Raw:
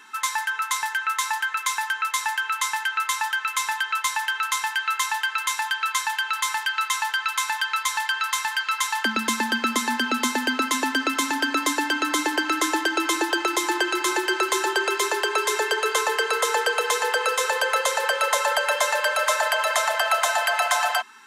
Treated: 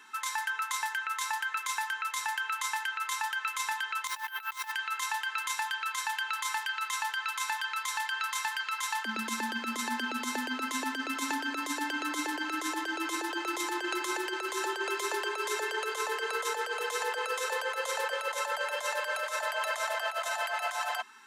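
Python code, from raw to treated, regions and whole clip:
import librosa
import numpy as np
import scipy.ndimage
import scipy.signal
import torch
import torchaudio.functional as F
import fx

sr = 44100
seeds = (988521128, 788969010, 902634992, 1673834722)

y = fx.chain(x, sr, fx.over_compress(threshold_db=-31.0, ratio=-0.5),
    fx.resample_bad(factor=3, down='filtered', up='hold'), at=(4.07, 4.72))
y = fx.over_compress(y, sr, threshold_db=-24.0, ratio=-0.5)
y = scipy.signal.sosfilt(scipy.signal.butter(2, 150.0, 'highpass', fs=sr, output='sos'), y)
y = y * librosa.db_to_amplitude(-7.5)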